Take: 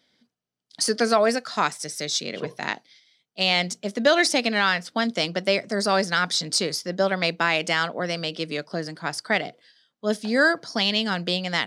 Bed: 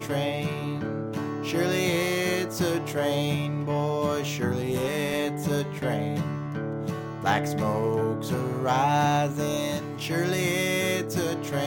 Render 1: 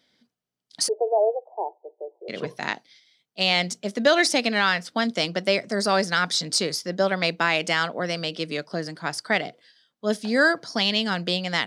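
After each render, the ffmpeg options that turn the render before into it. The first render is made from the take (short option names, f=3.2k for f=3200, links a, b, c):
-filter_complex "[0:a]asplit=3[a][b][c];[a]afade=t=out:st=0.87:d=0.02[d];[b]asuperpass=centerf=560:order=20:qfactor=0.99,afade=t=in:st=0.87:d=0.02,afade=t=out:st=2.28:d=0.02[e];[c]afade=t=in:st=2.28:d=0.02[f];[d][e][f]amix=inputs=3:normalize=0"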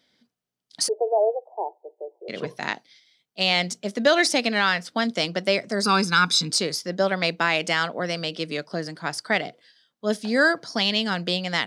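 -filter_complex "[0:a]asettb=1/sr,asplit=3[a][b][c];[a]atrim=end=5.834[d];[b]atrim=start=5.83:end=6.51,asetpts=PTS-STARTPTS,afade=t=in:d=0.004:c=qsin,afade=t=out:st=0.676:d=0.004:c=qsin,aecho=1:1:0.8:0.94,atrim=end_sample=29988[e];[c]atrim=start=6.506[f];[d][e]acrossfade=d=0.004:c1=hsin:c2=qsin[g];[g][f]acrossfade=d=0.004:c1=qsin:c2=hsin"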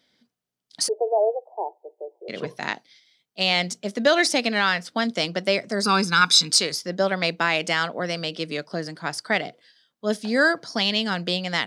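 -filter_complex "[0:a]asettb=1/sr,asplit=3[a][b][c];[a]atrim=end=6.214[d];[b]atrim=start=6.21:end=6.72,asetpts=PTS-STARTPTS,afade=t=in:d=0.004:c=qsin,afade=t=out:st=0.506:d=0.004:c=qsin,tiltshelf=f=650:g=-5[e];[c]atrim=start=6.716[f];[d][e]acrossfade=d=0.004:c1=hsin:c2=qsin[g];[g][f]acrossfade=d=0.004:c1=qsin:c2=hsin"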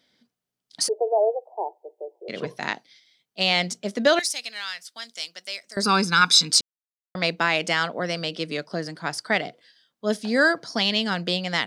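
-filter_complex "[0:a]asettb=1/sr,asplit=3[a][b][c];[a]atrim=end=4.194[d];[b]atrim=start=4.19:end=5.77,asetpts=PTS-STARTPTS,afade=t=in:d=0.004:c=qsin,afade=t=out:st=1.576:d=0.004:c=qsin,aderivative[e];[c]atrim=start=5.766[f];[d][e]acrossfade=d=0.004:c1=hsin:c2=qsin[g];[g][f]acrossfade=d=0.004:c1=qsin:c2=hsin,asplit=3[h][i][j];[h]atrim=end=6.61,asetpts=PTS-STARTPTS,afade=t=out:st=6.606:d=0.004:c=hsin[k];[i]atrim=start=6.61:end=7.15,asetpts=PTS-STARTPTS,volume=0[l];[j]atrim=start=7.15,asetpts=PTS-STARTPTS,afade=t=in:d=0.004:c=hsin[m];[k][l][m]concat=n=3:v=0:a=1"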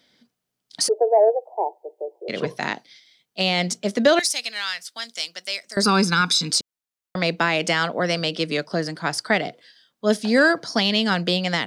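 -filter_complex "[0:a]acrossover=split=570[a][b];[b]alimiter=limit=-15dB:level=0:latency=1:release=113[c];[a][c]amix=inputs=2:normalize=0,acontrast=27"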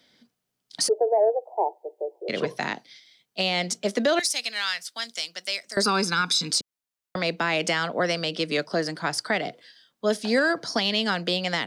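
-filter_complex "[0:a]acrossover=split=250[a][b];[a]acompressor=threshold=-37dB:ratio=6[c];[b]alimiter=limit=-13.5dB:level=0:latency=1:release=207[d];[c][d]amix=inputs=2:normalize=0"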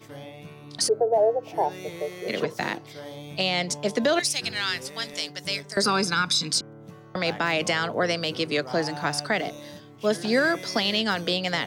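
-filter_complex "[1:a]volume=-14dB[a];[0:a][a]amix=inputs=2:normalize=0"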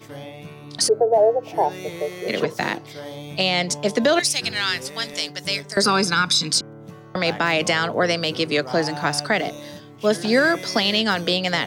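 -af "volume=4.5dB"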